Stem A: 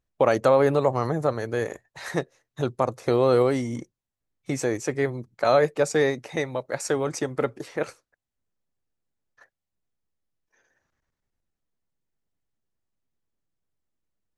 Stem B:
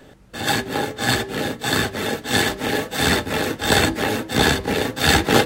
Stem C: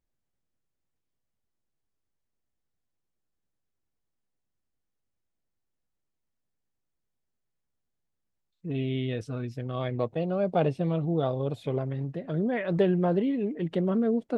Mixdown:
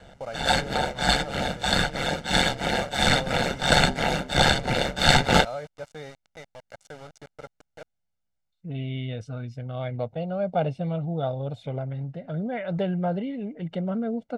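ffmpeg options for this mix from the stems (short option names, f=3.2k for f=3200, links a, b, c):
-filter_complex "[0:a]lowshelf=f=160:g=5.5,aeval=exprs='val(0)*gte(abs(val(0)),0.0531)':c=same,volume=-17.5dB[a];[1:a]aeval=exprs='val(0)*sin(2*PI*69*n/s)':c=same,volume=-0.5dB[b];[2:a]volume=-2dB[c];[a][b][c]amix=inputs=3:normalize=0,lowpass=7.4k,aecho=1:1:1.4:0.62"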